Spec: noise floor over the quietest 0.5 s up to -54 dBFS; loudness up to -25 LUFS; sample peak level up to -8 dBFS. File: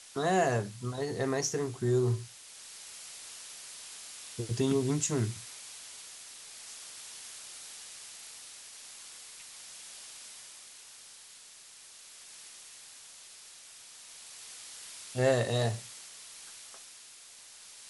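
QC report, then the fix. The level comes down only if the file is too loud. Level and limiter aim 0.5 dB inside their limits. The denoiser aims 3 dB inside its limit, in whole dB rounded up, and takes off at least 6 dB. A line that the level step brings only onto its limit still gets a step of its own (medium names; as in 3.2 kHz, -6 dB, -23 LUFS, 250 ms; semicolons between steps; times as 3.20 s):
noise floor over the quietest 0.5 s -53 dBFS: fail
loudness -35.0 LUFS: pass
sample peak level -16.0 dBFS: pass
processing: noise reduction 6 dB, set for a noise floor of -53 dBFS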